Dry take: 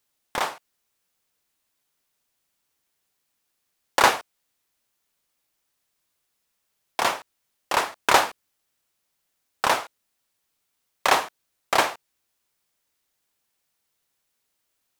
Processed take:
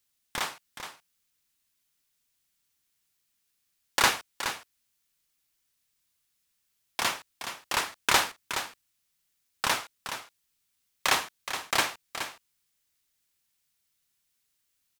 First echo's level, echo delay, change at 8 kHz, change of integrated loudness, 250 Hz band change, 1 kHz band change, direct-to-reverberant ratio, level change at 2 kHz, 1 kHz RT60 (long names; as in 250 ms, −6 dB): −9.5 dB, 421 ms, 0.0 dB, −5.5 dB, −5.5 dB, −7.5 dB, no reverb audible, −3.0 dB, no reverb audible